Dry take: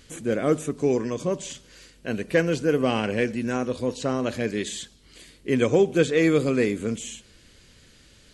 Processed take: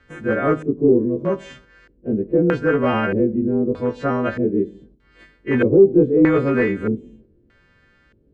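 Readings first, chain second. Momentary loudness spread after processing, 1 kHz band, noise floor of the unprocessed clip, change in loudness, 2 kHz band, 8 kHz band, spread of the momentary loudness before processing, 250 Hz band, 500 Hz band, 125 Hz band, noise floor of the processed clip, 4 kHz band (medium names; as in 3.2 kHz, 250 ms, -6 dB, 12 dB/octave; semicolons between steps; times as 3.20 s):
12 LU, +6.0 dB, -55 dBFS, +5.5 dB, +3.0 dB, under -20 dB, 16 LU, +7.0 dB, +5.5 dB, +5.0 dB, -58 dBFS, no reading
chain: partials quantised in pitch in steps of 2 st; gate -40 dBFS, range -6 dB; tilt shelf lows +3 dB, about 770 Hz; in parallel at -8 dB: wavefolder -16.5 dBFS; on the sum: LFO low-pass square 0.8 Hz 360–1600 Hz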